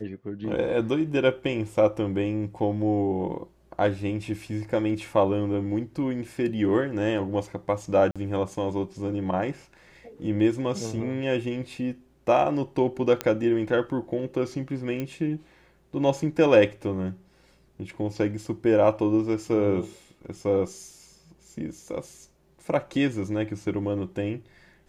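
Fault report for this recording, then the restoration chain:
0:08.11–0:08.16: drop-out 46 ms
0:13.21: click −11 dBFS
0:15.00: click −18 dBFS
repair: click removal
repair the gap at 0:08.11, 46 ms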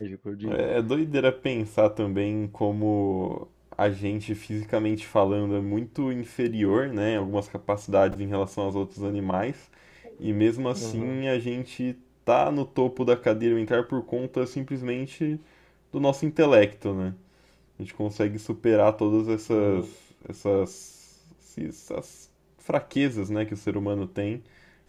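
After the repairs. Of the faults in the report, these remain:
none of them is left

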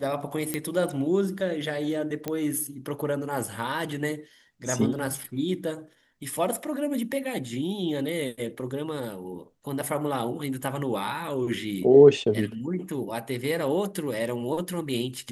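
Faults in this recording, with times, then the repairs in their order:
0:00.54: click −13 dBFS
0:02.28: click −15 dBFS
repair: click removal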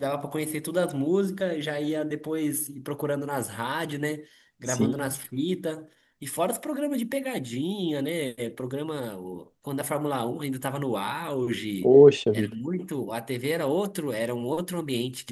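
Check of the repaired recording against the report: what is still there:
none of them is left

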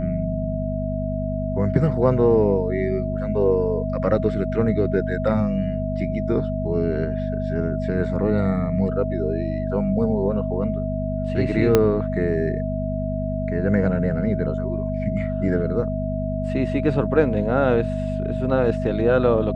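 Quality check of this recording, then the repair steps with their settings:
mains hum 50 Hz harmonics 5 −26 dBFS
whistle 640 Hz −28 dBFS
0:11.75: click −3 dBFS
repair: click removal
notch filter 640 Hz, Q 30
hum removal 50 Hz, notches 5

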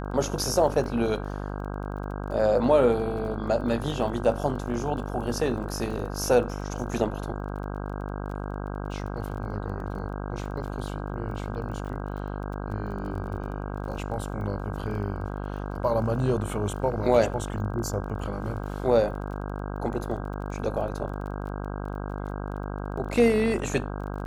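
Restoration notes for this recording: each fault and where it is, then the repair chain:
mains buzz 50 Hz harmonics 32 −33 dBFS
surface crackle 21 per second −37 dBFS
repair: click removal
hum removal 50 Hz, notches 32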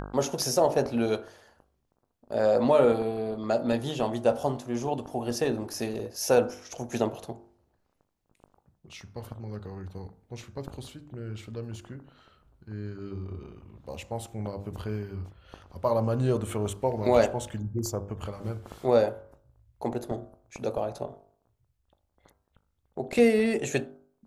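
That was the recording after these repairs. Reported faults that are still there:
none of them is left

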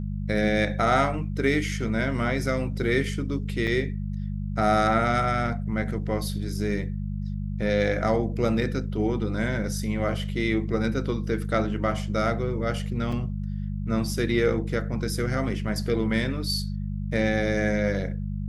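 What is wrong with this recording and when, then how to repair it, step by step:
mains hum 50 Hz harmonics 4 −30 dBFS
0:03.67–0:03.68: drop-out 6 ms
0:13.12: drop-out 4.6 ms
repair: hum removal 50 Hz, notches 4
repair the gap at 0:03.67, 6 ms
repair the gap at 0:13.12, 4.6 ms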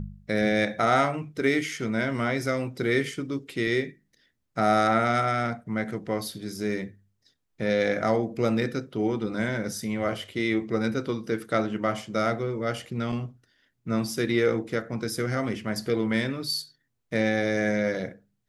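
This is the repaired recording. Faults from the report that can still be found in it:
none of them is left

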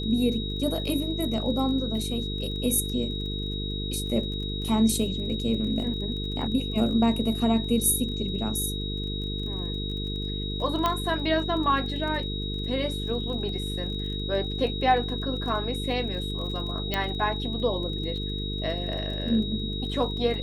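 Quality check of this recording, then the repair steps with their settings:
mains buzz 50 Hz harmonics 9 −32 dBFS
surface crackle 24 per second −36 dBFS
whistle 3,800 Hz −34 dBFS
0:10.86: click −11 dBFS
0:16.94: click −12 dBFS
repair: click removal
notch filter 3,800 Hz, Q 30
hum removal 50 Hz, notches 9

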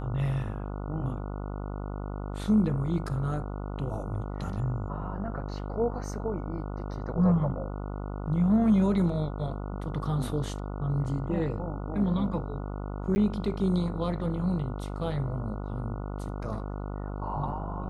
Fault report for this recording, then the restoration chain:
mains buzz 50 Hz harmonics 29 −35 dBFS
0:13.15–0:13.16: drop-out 10 ms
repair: hum removal 50 Hz, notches 29
repair the gap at 0:13.15, 10 ms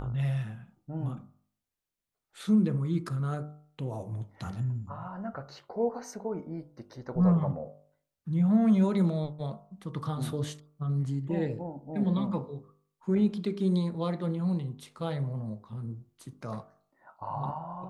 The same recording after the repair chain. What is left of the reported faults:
none of them is left

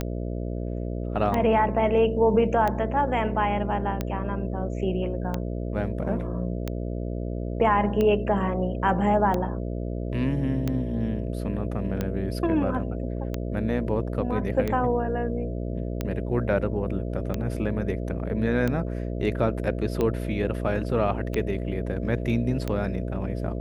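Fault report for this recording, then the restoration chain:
mains buzz 60 Hz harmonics 11 −30 dBFS
scratch tick 45 rpm −14 dBFS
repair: click removal
hum removal 60 Hz, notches 11

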